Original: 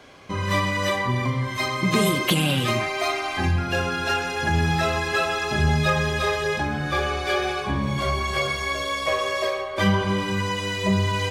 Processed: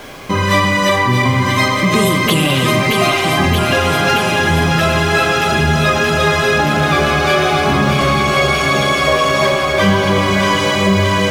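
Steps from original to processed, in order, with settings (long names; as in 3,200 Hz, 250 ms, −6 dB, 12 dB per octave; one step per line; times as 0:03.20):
on a send: delay that swaps between a low-pass and a high-pass 313 ms, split 1,300 Hz, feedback 88%, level −6 dB
on the sum: speech leveller within 4 dB 0.5 s
high-pass filter 100 Hz
notch filter 4,300 Hz, Q 28
in parallel at −1 dB: brickwall limiter −18 dBFS, peak gain reduction 9 dB
on the sum: background noise pink −46 dBFS
level +5 dB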